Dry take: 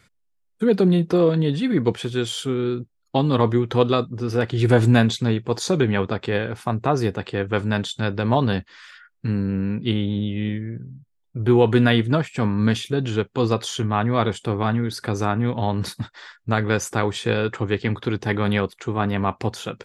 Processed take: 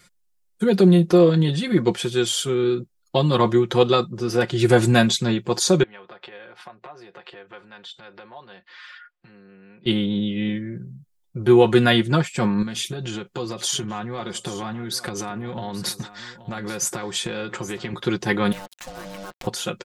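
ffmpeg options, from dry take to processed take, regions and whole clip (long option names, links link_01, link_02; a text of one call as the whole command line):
ffmpeg -i in.wav -filter_complex "[0:a]asettb=1/sr,asplit=3[link_01][link_02][link_03];[link_01]atrim=end=5.834[link_04];[link_02]atrim=start=5.83:end=9.86,asetpts=PTS-STARTPTS,afade=type=in:duration=0.004:curve=qsin,afade=type=out:start_time=4.026:duration=0.004:curve=qsin,bandreject=frequency=6600:width=23,acompressor=threshold=-34dB:ratio=12:attack=3.2:release=140:knee=1:detection=peak,acrossover=split=430 4100:gain=0.178 1 0.0708[link_05][link_06][link_07];[link_05][link_06][link_07]amix=inputs=3:normalize=0[link_08];[link_03]atrim=start=9.856[link_09];[link_04][link_08]acrossfade=duration=0.004:curve1=hsin:curve2=qsin[link_10];[link_10][link_09]acrossfade=duration=0.004:curve1=qsin:curve2=hsin,asettb=1/sr,asplit=3[link_11][link_12][link_13];[link_11]atrim=end=12.624[link_14];[link_12]atrim=start=12.62:end=17.93,asetpts=PTS-STARTPTS,afade=type=in:duration=0.004:curve=qsin,afade=type=out:start_time=5.306:duration=0.004:curve=qsin,acompressor=threshold=-24dB:ratio=16:attack=3.2:release=140:knee=1:detection=peak,aecho=1:1:827:0.168,atrim=end_sample=234171[link_15];[link_13]atrim=start=17.926[link_16];[link_14][link_15]acrossfade=duration=0.004:curve1=hsin:curve2=qsin[link_17];[link_17][link_16]acrossfade=duration=0.004:curve1=qsin:curve2=hsin,asettb=1/sr,asplit=3[link_18][link_19][link_20];[link_18]atrim=end=18.524[link_21];[link_19]atrim=start=18.52:end=19.47,asetpts=PTS-STARTPTS,afade=type=in:duration=0.004:curve=qsin,afade=type=out:start_time=0.946:duration=0.004:curve=qsin,aeval=exprs='val(0)*sin(2*PI*390*n/s)':channel_layout=same,acompressor=threshold=-37dB:ratio=3:attack=3.2:release=140:knee=1:detection=peak,acrusher=bits=6:mix=0:aa=0.5[link_22];[link_20]atrim=start=19.466[link_23];[link_21][link_22]acrossfade=duration=0.004:curve1=hsin:curve2=qsin[link_24];[link_24][link_23]acrossfade=duration=0.004:curve1=qsin:curve2=hsin,bass=frequency=250:gain=-2,treble=frequency=4000:gain=7,aecho=1:1:5.6:0.73" out.wav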